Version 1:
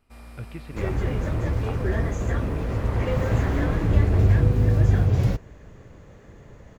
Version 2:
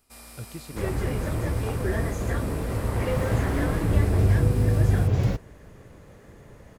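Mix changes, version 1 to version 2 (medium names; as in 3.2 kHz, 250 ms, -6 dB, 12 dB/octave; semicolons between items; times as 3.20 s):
speech: remove resonant low-pass 2.3 kHz, resonance Q 2.8; first sound: add tone controls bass -5 dB, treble +15 dB; master: add bass shelf 110 Hz -4 dB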